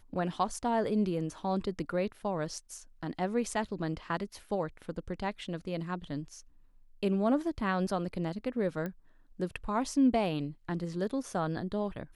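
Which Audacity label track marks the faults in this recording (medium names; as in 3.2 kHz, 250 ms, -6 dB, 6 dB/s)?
8.860000	8.860000	pop -24 dBFS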